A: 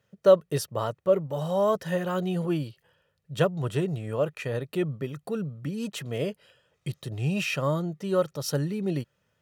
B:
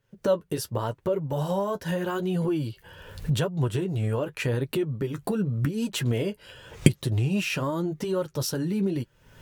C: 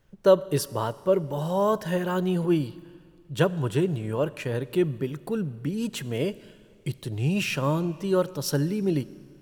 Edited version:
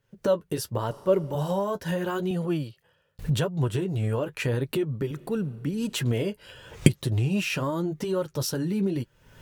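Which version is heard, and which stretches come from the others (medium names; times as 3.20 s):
B
0.91–1.35 s: from C
2.31–3.19 s: from A
5.11–5.93 s: from C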